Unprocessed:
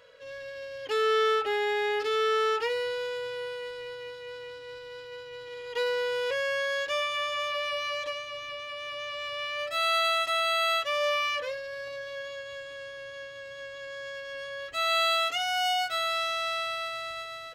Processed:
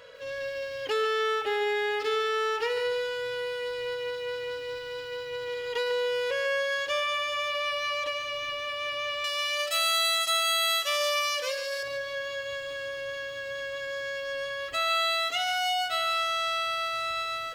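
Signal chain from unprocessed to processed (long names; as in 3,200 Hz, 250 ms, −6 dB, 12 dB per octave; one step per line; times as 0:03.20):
0:09.24–0:11.83: bass and treble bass −13 dB, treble +15 dB
downward compressor 2 to 1, threshold −37 dBFS, peak gain reduction 10 dB
feedback echo at a low word length 145 ms, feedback 35%, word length 10 bits, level −11 dB
level +6.5 dB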